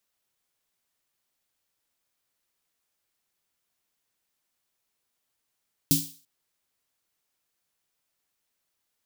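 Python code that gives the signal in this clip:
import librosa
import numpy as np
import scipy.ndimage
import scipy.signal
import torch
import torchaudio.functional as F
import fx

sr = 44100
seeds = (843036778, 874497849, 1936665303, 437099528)

y = fx.drum_snare(sr, seeds[0], length_s=0.34, hz=160.0, second_hz=280.0, noise_db=0, noise_from_hz=3500.0, decay_s=0.3, noise_decay_s=0.42)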